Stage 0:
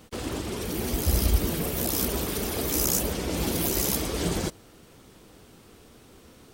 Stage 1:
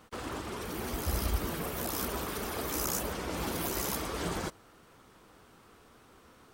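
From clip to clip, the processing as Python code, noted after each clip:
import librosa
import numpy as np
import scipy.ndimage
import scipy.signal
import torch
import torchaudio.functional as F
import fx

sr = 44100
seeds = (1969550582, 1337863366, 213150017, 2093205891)

y = fx.peak_eq(x, sr, hz=1200.0, db=10.5, octaves=1.6)
y = F.gain(torch.from_numpy(y), -9.0).numpy()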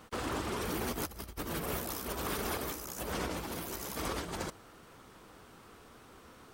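y = fx.over_compress(x, sr, threshold_db=-37.0, ratio=-0.5)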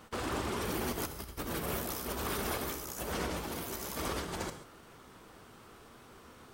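y = fx.rev_gated(x, sr, seeds[0], gate_ms=160, shape='flat', drr_db=8.5)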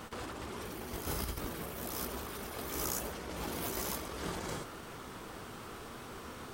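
y = fx.over_compress(x, sr, threshold_db=-43.0, ratio=-1.0)
y = F.gain(torch.from_numpy(y), 3.0).numpy()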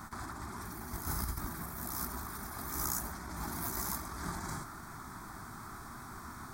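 y = fx.fixed_phaser(x, sr, hz=1200.0, stages=4)
y = F.gain(torch.from_numpy(y), 2.5).numpy()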